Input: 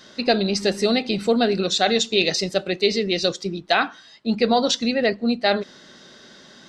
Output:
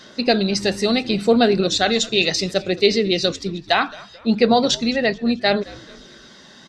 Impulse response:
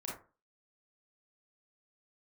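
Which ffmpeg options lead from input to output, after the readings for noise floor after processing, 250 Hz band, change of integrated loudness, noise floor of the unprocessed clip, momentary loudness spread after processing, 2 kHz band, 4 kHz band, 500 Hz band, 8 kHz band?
-45 dBFS, +3.0 dB, +2.0 dB, -48 dBFS, 7 LU, +2.0 dB, +2.0 dB, +2.0 dB, +2.0 dB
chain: -filter_complex "[0:a]aphaser=in_gain=1:out_gain=1:delay=1.1:decay=0.26:speed=0.69:type=sinusoidal,asplit=4[a][b][c][d];[b]adelay=217,afreqshift=-86,volume=-21.5dB[e];[c]adelay=434,afreqshift=-172,volume=-28.2dB[f];[d]adelay=651,afreqshift=-258,volume=-35dB[g];[a][e][f][g]amix=inputs=4:normalize=0,volume=1.5dB"

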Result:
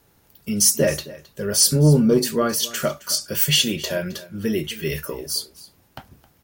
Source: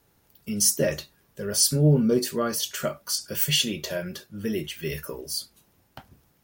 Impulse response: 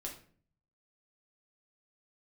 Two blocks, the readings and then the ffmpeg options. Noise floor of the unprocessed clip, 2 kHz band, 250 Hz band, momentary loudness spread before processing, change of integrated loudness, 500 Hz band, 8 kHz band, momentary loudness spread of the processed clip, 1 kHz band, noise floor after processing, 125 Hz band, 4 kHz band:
-65 dBFS, +5.0 dB, +5.0 dB, 14 LU, +5.0 dB, +5.0 dB, +5.0 dB, 15 LU, +5.5 dB, -60 dBFS, +4.5 dB, +5.0 dB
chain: -af "acontrast=76,aecho=1:1:266:0.112,volume=-1.5dB"

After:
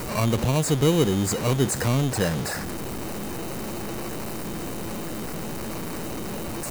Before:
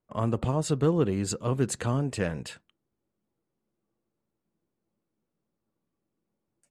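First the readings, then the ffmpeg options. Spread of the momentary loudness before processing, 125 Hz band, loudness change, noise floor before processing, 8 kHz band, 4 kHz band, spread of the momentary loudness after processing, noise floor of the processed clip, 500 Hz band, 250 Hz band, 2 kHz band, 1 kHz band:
7 LU, +5.5 dB, +1.5 dB, -84 dBFS, +8.5 dB, +11.5 dB, 11 LU, -31 dBFS, +5.0 dB, +5.5 dB, +9.5 dB, +6.5 dB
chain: -filter_complex "[0:a]aeval=exprs='val(0)+0.5*0.0473*sgn(val(0))':c=same,acrossover=split=4700[a][b];[a]acrusher=samples=13:mix=1:aa=0.000001[c];[c][b]amix=inputs=2:normalize=0,volume=2dB"

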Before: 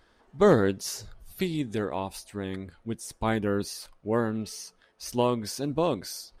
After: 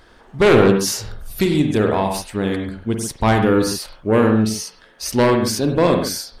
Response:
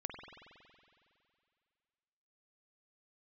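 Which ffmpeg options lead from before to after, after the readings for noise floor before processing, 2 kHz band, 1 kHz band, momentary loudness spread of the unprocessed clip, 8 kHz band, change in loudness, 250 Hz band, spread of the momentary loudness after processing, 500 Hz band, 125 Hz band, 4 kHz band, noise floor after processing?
-64 dBFS, +12.5 dB, +10.5 dB, 15 LU, +12.0 dB, +11.0 dB, +11.5 dB, 11 LU, +10.0 dB, +12.0 dB, +12.0 dB, -49 dBFS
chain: -filter_complex "[0:a]aeval=exprs='0.355*sin(PI/2*2.51*val(0)/0.355)':c=same[a];[1:a]atrim=start_sample=2205,atrim=end_sample=6615[b];[a][b]afir=irnorm=-1:irlink=0,volume=3.5dB"

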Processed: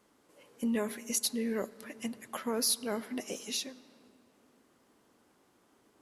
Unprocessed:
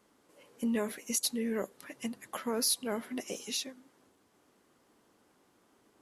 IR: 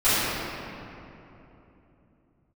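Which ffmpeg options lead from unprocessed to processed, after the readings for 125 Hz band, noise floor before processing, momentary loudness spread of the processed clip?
0.0 dB, -69 dBFS, 12 LU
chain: -filter_complex "[0:a]asplit=2[a][b];[1:a]atrim=start_sample=2205,lowpass=9k,adelay=32[c];[b][c]afir=irnorm=-1:irlink=0,volume=-38.5dB[d];[a][d]amix=inputs=2:normalize=0"

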